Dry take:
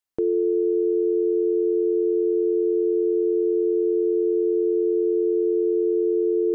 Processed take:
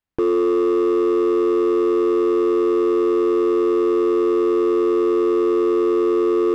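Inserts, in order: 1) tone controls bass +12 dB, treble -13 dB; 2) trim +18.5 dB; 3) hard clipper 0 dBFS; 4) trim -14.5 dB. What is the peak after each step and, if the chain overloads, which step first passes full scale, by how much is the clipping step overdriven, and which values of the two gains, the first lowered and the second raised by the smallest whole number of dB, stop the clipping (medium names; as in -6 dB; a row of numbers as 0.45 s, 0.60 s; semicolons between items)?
-9.5 dBFS, +9.0 dBFS, 0.0 dBFS, -14.5 dBFS; step 2, 9.0 dB; step 2 +9.5 dB, step 4 -5.5 dB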